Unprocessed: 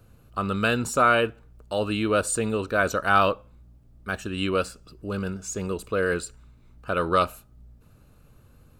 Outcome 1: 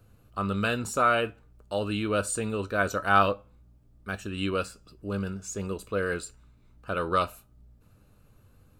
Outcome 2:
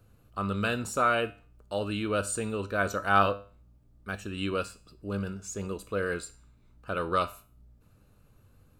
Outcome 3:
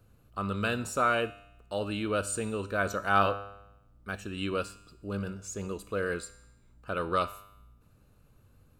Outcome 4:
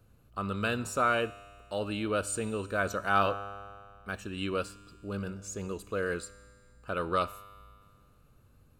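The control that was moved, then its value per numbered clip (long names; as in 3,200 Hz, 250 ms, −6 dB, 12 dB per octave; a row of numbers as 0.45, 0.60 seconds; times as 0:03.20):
tuned comb filter, decay: 0.16, 0.39, 0.86, 2 seconds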